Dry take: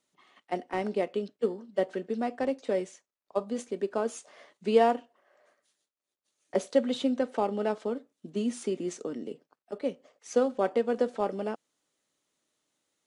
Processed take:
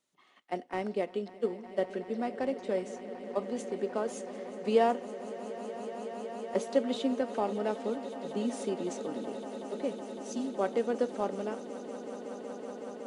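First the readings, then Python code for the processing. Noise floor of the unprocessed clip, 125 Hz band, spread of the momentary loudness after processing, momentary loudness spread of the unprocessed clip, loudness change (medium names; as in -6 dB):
under -85 dBFS, -2.0 dB, 11 LU, 11 LU, -3.5 dB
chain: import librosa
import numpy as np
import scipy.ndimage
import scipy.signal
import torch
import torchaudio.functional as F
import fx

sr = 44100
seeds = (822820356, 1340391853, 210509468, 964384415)

y = fx.spec_erase(x, sr, start_s=10.25, length_s=0.3, low_hz=330.0, high_hz=2500.0)
y = fx.echo_swell(y, sr, ms=186, loudest=8, wet_db=-17.5)
y = F.gain(torch.from_numpy(y), -3.0).numpy()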